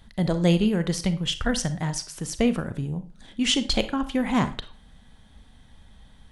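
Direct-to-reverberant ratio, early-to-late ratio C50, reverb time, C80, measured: 11.0 dB, 13.5 dB, 0.40 s, 18.5 dB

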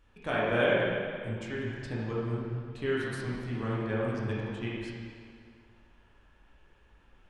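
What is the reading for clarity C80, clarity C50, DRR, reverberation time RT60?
0.0 dB, -2.5 dB, -7.5 dB, 2.1 s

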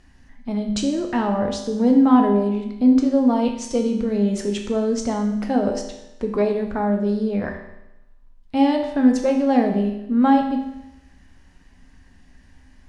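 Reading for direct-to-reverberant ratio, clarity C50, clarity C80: 2.0 dB, 6.5 dB, 9.0 dB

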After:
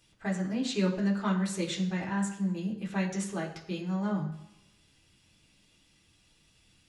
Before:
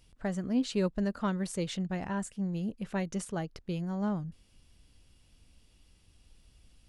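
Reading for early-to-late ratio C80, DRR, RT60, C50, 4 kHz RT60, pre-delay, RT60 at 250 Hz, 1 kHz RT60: 11.5 dB, -4.0 dB, 0.90 s, 8.0 dB, 0.90 s, 3 ms, 0.85 s, 0.90 s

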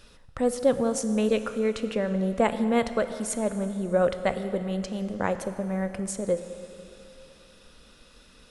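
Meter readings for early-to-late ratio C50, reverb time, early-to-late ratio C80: 10.5 dB, 2.9 s, 11.0 dB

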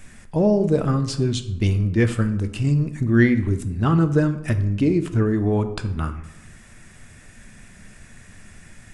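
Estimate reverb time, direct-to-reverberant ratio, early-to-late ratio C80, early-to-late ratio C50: 0.85 s, 8.5 dB, 15.0 dB, 12.5 dB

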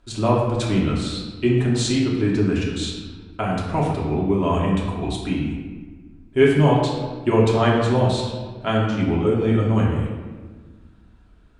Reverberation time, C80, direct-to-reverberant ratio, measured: 1.5 s, 3.5 dB, -4.5 dB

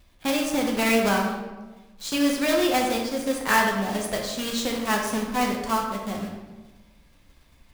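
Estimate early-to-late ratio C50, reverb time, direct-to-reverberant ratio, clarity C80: 3.5 dB, 1.2 s, -0.5 dB, 5.5 dB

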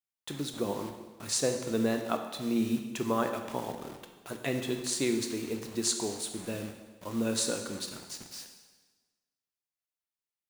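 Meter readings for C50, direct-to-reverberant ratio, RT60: 7.0 dB, 4.5 dB, 1.3 s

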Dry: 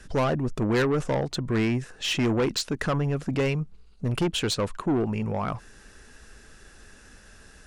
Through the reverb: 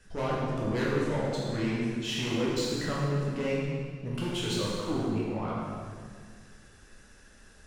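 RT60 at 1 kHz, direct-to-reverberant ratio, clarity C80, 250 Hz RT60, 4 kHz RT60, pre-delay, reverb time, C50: 1.8 s, -6.5 dB, 0.5 dB, 2.3 s, 1.6 s, 8 ms, 1.9 s, -2.0 dB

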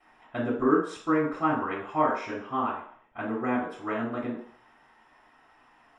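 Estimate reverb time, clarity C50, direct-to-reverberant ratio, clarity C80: 0.55 s, 4.5 dB, -15.5 dB, 8.0 dB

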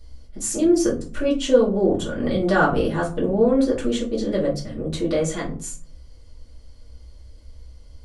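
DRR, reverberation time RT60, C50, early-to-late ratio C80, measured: -6.5 dB, 0.45 s, 10.5 dB, 16.0 dB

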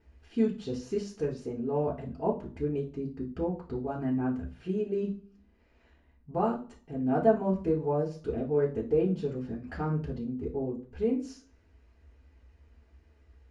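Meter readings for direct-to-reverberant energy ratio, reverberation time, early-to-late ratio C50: -3.5 dB, 0.40 s, 11.0 dB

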